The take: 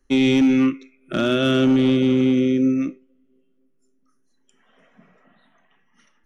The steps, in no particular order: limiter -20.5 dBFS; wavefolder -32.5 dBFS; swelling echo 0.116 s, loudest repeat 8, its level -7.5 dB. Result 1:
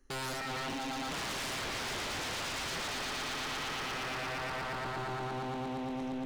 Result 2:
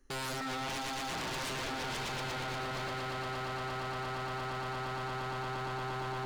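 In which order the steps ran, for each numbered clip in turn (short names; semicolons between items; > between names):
limiter > swelling echo > wavefolder; swelling echo > limiter > wavefolder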